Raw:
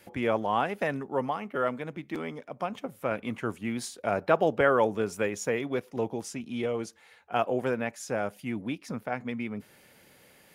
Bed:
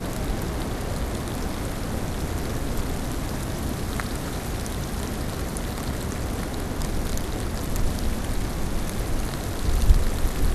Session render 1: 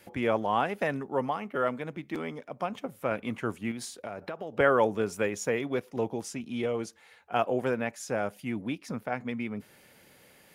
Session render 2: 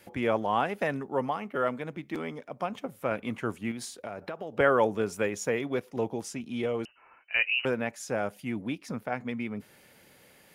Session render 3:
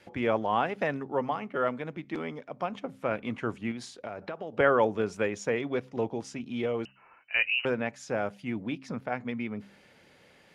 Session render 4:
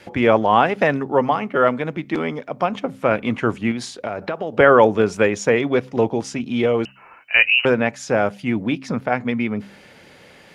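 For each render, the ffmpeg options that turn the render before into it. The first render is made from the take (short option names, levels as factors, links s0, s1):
-filter_complex "[0:a]asettb=1/sr,asplit=3[s0][s1][s2];[s0]atrim=end=3.714[s3];[s1]atrim=start=3.71:end=4.58,asetpts=PTS-STARTPTS,afade=t=in:d=0.004:c=qsin,afade=t=out:st=0.866:d=0.004:c=qsin,acompressor=threshold=0.02:ratio=6:attack=3.2:release=140:knee=1:detection=peak[s4];[s2]atrim=start=4.576[s5];[s3][s4]acrossfade=d=0.004:c1=hsin:c2=qsin[s6];[s6][s5]acrossfade=d=0.004:c1=qsin:c2=hsin"
-filter_complex "[0:a]asettb=1/sr,asplit=3[s0][s1][s2];[s0]atrim=end=6.854[s3];[s1]atrim=start=6.85:end=7.65,asetpts=PTS-STARTPTS,afade=t=in:d=0.004:c=qsin,afade=t=out:st=0.796:d=0.004:c=qsin,lowpass=f=2600:t=q:w=0.5098,lowpass=f=2600:t=q:w=0.6013,lowpass=f=2600:t=q:w=0.9,lowpass=f=2600:t=q:w=2.563,afreqshift=-3100[s4];[s2]atrim=start=7.646[s5];[s3][s4]acrossfade=d=0.004:c1=hsin:c2=qsin[s6];[s6][s5]acrossfade=d=0.004:c1=qsin:c2=hsin"
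-af "lowpass=5400,bandreject=f=66.28:t=h:w=4,bandreject=f=132.56:t=h:w=4,bandreject=f=198.84:t=h:w=4,bandreject=f=265.12:t=h:w=4"
-af "volume=3.98,alimiter=limit=0.891:level=0:latency=1"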